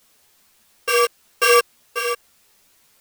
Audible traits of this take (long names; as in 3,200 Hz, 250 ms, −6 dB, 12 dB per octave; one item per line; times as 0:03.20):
a buzz of ramps at a fixed pitch in blocks of 16 samples
sample-and-hold tremolo 3.6 Hz, depth 100%
a quantiser's noise floor 10 bits, dither triangular
a shimmering, thickened sound